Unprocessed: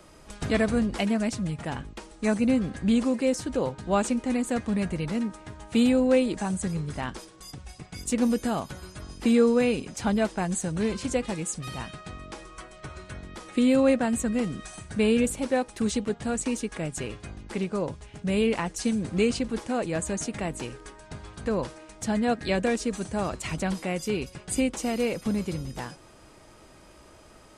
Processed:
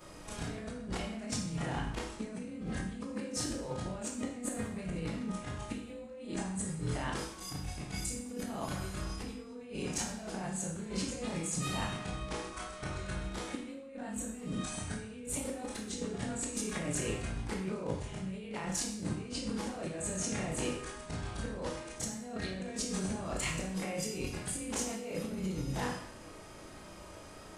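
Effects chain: short-time reversal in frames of 74 ms; negative-ratio compressor -38 dBFS, ratio -1; reverb RT60 0.80 s, pre-delay 6 ms, DRR 1 dB; gain -3.5 dB

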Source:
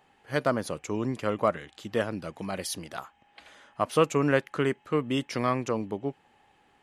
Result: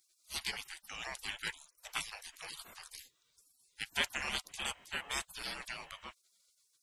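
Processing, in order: 0.83–2.4 de-hum 80 Hz, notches 3; 4.44–5.04 whine 2800 Hz -50 dBFS; spectral gate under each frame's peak -30 dB weak; gain +10.5 dB

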